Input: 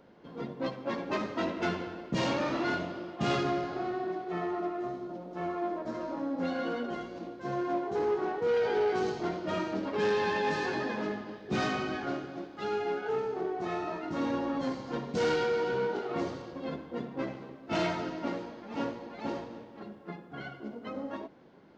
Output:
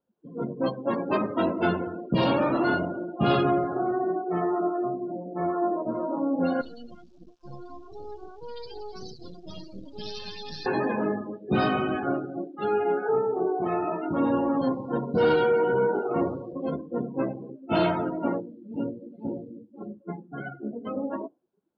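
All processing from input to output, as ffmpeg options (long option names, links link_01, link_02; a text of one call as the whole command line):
ffmpeg -i in.wav -filter_complex "[0:a]asettb=1/sr,asplit=3[link_01][link_02][link_03];[link_01]atrim=end=6.614[link_04];[link_02]atrim=start=6.61:end=10.66,asetpts=PTS-STARTPTS,afade=type=in:duration=0.004:curve=qsin,afade=type=out:start_time=4.046:duration=0.004:curve=qsin,acrossover=split=170|3000[link_05][link_06][link_07];[link_06]acompressor=threshold=-54dB:ratio=2:attack=3.2:release=140:knee=2.83:detection=peak[link_08];[link_05][link_08][link_07]amix=inputs=3:normalize=0,acrusher=bits=5:dc=4:mix=0:aa=0.000001,equalizer=frequency=5700:width=0.75:gain=13.5[link_09];[link_03]atrim=start=10.656[link_10];[link_04][link_09]acrossfade=duration=0.004:curve1=hsin:curve2=qsin[link_11];[link_11][link_10]acrossfade=duration=0.004:curve1=qsin:curve2=hsin,asettb=1/sr,asplit=3[link_12][link_13][link_14];[link_12]atrim=end=18.404[link_15];[link_13]atrim=start=18.4:end=19.74,asetpts=PTS-STARTPTS,afade=type=in:duration=0.004:curve=qsin,afade=type=out:start_time=1.336:duration=0.004:curve=qsin,lowpass=4300,equalizer=frequency=1100:width_type=o:width=2.1:gain=-12.5[link_16];[link_14]atrim=start=19.736[link_17];[link_15][link_16]acrossfade=duration=0.004:curve1=hsin:curve2=qsin[link_18];[link_18][link_17]acrossfade=duration=0.004:curve1=qsin:curve2=hsin,lowpass=5200,afftdn=noise_reduction=34:noise_floor=-39,equalizer=frequency=2000:width_type=o:width=0.32:gain=-11.5,volume=7.5dB" out.wav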